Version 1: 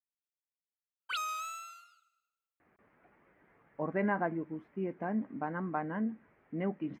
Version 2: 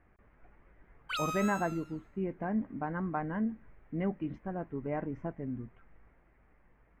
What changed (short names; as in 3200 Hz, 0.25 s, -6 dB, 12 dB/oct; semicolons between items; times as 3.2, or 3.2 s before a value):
speech: entry -2.60 s; master: remove HPF 180 Hz 12 dB/oct